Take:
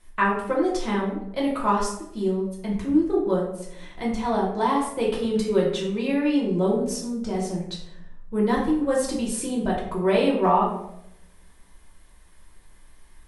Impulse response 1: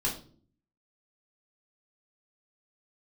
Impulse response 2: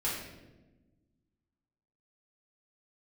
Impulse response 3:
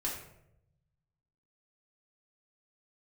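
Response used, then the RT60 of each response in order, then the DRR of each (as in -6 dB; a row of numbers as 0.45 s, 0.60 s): 3; 0.45 s, 1.1 s, 0.80 s; -4.5 dB, -8.0 dB, -4.5 dB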